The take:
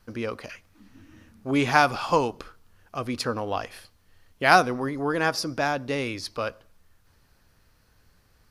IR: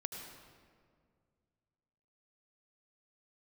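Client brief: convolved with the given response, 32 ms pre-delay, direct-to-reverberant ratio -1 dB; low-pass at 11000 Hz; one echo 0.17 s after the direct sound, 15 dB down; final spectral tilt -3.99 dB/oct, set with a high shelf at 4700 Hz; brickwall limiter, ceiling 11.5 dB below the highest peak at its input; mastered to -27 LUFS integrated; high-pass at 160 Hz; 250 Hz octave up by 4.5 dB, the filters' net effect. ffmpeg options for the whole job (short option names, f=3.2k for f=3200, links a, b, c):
-filter_complex "[0:a]highpass=160,lowpass=11k,equalizer=f=250:t=o:g=6,highshelf=f=4.7k:g=-4,alimiter=limit=-12.5dB:level=0:latency=1,aecho=1:1:170:0.178,asplit=2[a][b];[1:a]atrim=start_sample=2205,adelay=32[c];[b][c]afir=irnorm=-1:irlink=0,volume=2dB[d];[a][d]amix=inputs=2:normalize=0,volume=-3.5dB"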